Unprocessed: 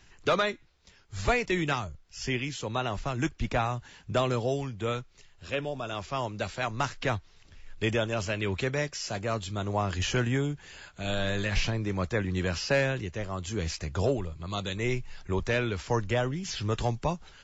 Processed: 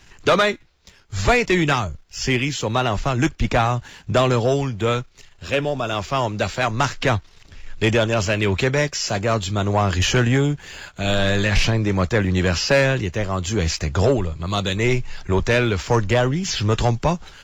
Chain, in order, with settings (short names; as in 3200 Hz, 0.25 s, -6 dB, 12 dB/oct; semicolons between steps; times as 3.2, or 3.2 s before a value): sample leveller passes 1; gain +7.5 dB